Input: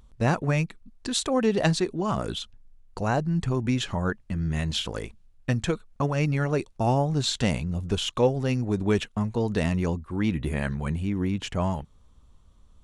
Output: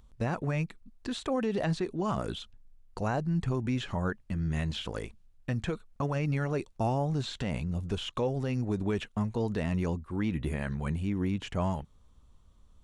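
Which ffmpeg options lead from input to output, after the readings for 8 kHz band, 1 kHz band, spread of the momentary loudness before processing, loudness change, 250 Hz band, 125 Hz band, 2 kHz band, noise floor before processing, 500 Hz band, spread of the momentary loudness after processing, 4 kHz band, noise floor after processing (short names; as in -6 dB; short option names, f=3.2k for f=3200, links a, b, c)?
-14.0 dB, -5.5 dB, 8 LU, -5.5 dB, -5.0 dB, -5.0 dB, -6.5 dB, -56 dBFS, -6.0 dB, 8 LU, -9.5 dB, -60 dBFS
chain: -filter_complex "[0:a]acrossover=split=3000[a][b];[b]acompressor=threshold=-42dB:ratio=4:attack=1:release=60[c];[a][c]amix=inputs=2:normalize=0,alimiter=limit=-17dB:level=0:latency=1:release=67,volume=-3.5dB"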